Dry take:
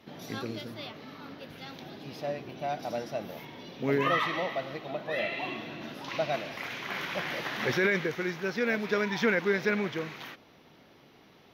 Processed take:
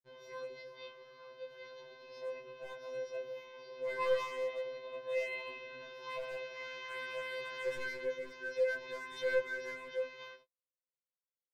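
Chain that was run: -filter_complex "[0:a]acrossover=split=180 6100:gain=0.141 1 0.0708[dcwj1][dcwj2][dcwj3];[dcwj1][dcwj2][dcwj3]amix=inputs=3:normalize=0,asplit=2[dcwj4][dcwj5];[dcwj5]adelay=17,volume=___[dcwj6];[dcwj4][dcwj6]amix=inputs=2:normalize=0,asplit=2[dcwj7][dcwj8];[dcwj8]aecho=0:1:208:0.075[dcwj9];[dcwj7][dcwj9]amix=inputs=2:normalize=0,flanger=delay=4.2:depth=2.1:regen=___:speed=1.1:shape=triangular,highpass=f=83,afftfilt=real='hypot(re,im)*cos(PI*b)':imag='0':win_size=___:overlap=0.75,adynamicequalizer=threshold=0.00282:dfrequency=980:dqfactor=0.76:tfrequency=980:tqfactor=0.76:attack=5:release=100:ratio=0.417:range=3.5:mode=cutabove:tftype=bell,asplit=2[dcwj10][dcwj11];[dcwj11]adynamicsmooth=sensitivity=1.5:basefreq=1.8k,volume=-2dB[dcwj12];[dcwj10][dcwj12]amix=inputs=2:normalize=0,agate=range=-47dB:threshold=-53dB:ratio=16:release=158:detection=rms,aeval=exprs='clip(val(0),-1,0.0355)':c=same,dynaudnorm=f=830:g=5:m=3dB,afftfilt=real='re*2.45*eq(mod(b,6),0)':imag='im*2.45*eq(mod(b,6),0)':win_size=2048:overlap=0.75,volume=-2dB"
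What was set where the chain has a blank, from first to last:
-14dB, -76, 1024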